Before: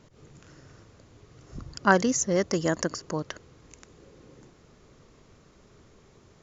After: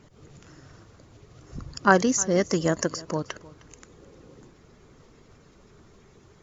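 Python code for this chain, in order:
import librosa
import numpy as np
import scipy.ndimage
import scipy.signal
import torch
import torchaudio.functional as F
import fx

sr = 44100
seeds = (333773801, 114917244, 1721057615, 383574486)

y = fx.spec_quant(x, sr, step_db=15)
y = y + 10.0 ** (-21.0 / 20.0) * np.pad(y, (int(309 * sr / 1000.0), 0))[:len(y)]
y = y * librosa.db_to_amplitude(2.5)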